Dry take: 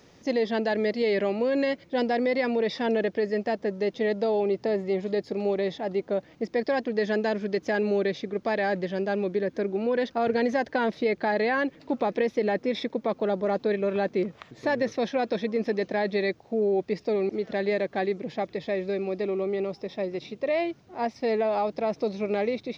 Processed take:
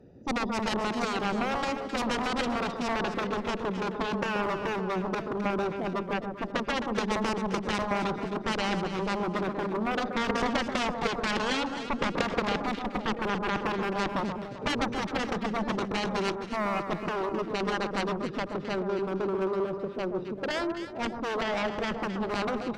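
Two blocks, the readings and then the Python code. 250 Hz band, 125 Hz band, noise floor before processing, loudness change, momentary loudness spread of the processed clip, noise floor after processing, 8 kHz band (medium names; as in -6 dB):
-1.5 dB, +2.0 dB, -56 dBFS, -3.0 dB, 4 LU, -39 dBFS, no reading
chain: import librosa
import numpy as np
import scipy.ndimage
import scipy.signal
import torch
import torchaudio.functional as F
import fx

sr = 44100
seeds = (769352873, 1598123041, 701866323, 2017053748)

p1 = fx.wiener(x, sr, points=41)
p2 = p1 + fx.echo_single(p1, sr, ms=963, db=-19.5, dry=0)
p3 = fx.cheby_harmonics(p2, sr, harmonics=(3, 5, 7), levels_db=(-10, -16, -9), full_scale_db=-13.5)
y = fx.echo_alternate(p3, sr, ms=131, hz=1300.0, feedback_pct=61, wet_db=-5.5)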